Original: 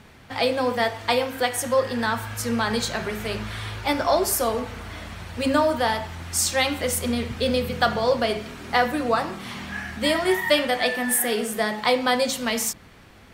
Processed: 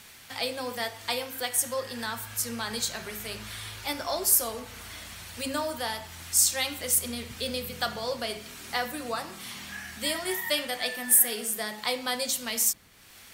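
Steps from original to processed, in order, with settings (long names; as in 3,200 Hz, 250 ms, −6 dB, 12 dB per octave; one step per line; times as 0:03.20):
first-order pre-emphasis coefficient 0.8
one half of a high-frequency compander encoder only
level +2 dB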